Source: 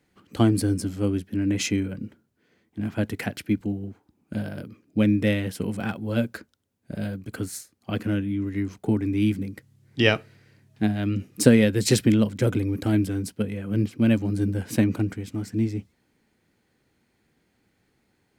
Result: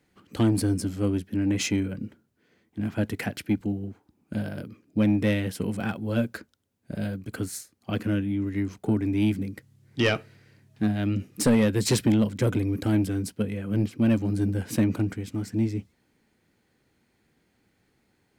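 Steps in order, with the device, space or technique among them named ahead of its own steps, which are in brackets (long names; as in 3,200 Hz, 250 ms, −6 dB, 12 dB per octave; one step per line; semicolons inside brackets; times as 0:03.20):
saturation between pre-emphasis and de-emphasis (high-shelf EQ 5,500 Hz +10 dB; soft clipping −14 dBFS, distortion −13 dB; high-shelf EQ 5,500 Hz −10 dB)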